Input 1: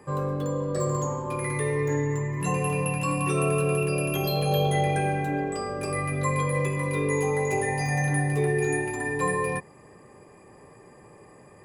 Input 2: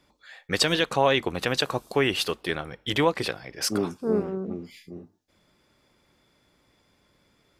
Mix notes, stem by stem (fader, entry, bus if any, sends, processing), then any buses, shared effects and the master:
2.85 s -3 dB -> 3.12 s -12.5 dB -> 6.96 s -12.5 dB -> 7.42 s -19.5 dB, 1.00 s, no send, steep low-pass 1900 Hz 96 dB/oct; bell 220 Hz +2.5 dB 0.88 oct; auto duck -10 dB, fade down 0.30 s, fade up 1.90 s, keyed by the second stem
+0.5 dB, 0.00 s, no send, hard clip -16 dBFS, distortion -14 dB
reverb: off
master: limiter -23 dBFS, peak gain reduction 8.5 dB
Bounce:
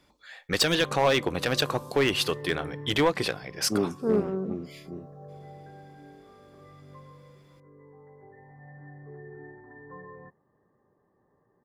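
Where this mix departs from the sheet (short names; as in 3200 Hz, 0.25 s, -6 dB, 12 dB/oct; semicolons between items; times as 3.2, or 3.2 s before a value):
stem 1: entry 1.00 s -> 0.70 s; master: missing limiter -23 dBFS, peak gain reduction 8.5 dB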